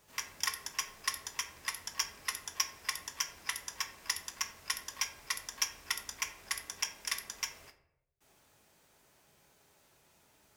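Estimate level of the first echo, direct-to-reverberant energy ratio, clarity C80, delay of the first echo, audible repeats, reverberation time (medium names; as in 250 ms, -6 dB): no echo, 6.0 dB, 14.0 dB, no echo, no echo, 0.85 s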